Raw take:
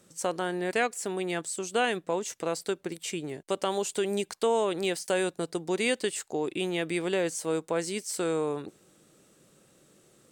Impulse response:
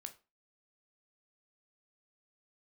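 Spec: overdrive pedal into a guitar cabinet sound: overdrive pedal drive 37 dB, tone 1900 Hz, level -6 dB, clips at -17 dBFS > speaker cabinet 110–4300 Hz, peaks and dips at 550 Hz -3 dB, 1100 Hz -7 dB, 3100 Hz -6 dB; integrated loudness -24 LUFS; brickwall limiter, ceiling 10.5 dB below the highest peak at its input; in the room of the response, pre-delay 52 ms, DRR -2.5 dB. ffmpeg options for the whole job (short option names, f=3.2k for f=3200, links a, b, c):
-filter_complex "[0:a]alimiter=level_in=1.5dB:limit=-24dB:level=0:latency=1,volume=-1.5dB,asplit=2[a][b];[1:a]atrim=start_sample=2205,adelay=52[c];[b][c]afir=irnorm=-1:irlink=0,volume=7.5dB[d];[a][d]amix=inputs=2:normalize=0,asplit=2[e][f];[f]highpass=f=720:p=1,volume=37dB,asoftclip=type=tanh:threshold=-17dB[g];[e][g]amix=inputs=2:normalize=0,lowpass=f=1.9k:p=1,volume=-6dB,highpass=110,equalizer=f=550:t=q:w=4:g=-3,equalizer=f=1.1k:t=q:w=4:g=-7,equalizer=f=3.1k:t=q:w=4:g=-6,lowpass=f=4.3k:w=0.5412,lowpass=f=4.3k:w=1.3066,volume=3dB"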